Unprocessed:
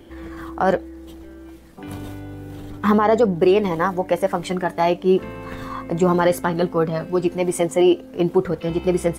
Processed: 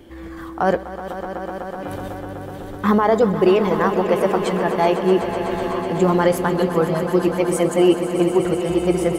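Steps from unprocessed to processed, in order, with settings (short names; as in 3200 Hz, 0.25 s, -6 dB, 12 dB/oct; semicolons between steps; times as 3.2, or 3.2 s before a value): swelling echo 0.125 s, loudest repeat 5, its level -13 dB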